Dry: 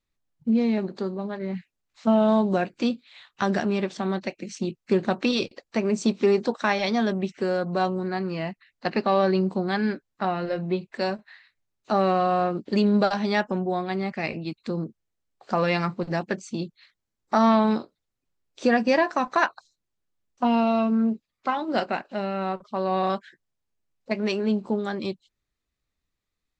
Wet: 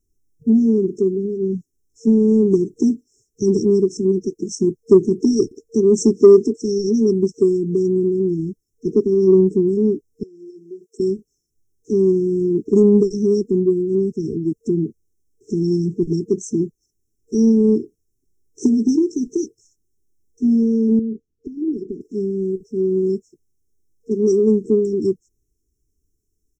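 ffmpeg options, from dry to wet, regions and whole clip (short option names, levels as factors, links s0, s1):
-filter_complex "[0:a]asettb=1/sr,asplit=3[s0][s1][s2];[s0]atrim=end=10.234[s3];[s1]atrim=start=10.23:end=11,asetpts=PTS-STARTPTS,afade=t=in:d=0.004:c=qsin,afade=t=out:st=0.766:d=0.004:c=qsin,acompressor=threshold=0.0316:ratio=12:attack=3.2:release=140:knee=1:detection=peak,highpass=f=770:t=q:w=4.9[s4];[s2]atrim=start=10.996[s5];[s3][s4]acrossfade=d=0.004:c1=hsin:c2=qsin[s6];[s6][s5]acrossfade=d=0.004:c1=qsin:c2=hsin,asettb=1/sr,asplit=3[s7][s8][s9];[s7]atrim=end=20.994[s10];[s8]atrim=start=20.99:end=22.01,asetpts=PTS-STARTPTS,afade=t=in:d=0.004:c=qsin,afade=t=out:st=1.016:d=0.004:c=qsin,lowpass=f=1300:p=1,acompressor=threshold=0.0398:ratio=10:attack=3.2:release=140:knee=1:detection=peak[s11];[s9]atrim=start=22.006[s12];[s10][s11]acrossfade=d=0.004:c1=hsin:c2=qsin[s13];[s13][s12]acrossfade=d=0.004:c1=qsin:c2=hsin,afftfilt=real='re*(1-between(b*sr/4096,460,5300))':imag='im*(1-between(b*sr/4096,460,5300))':win_size=4096:overlap=0.75,aecho=1:1:2.6:0.37,acontrast=86,volume=1.5"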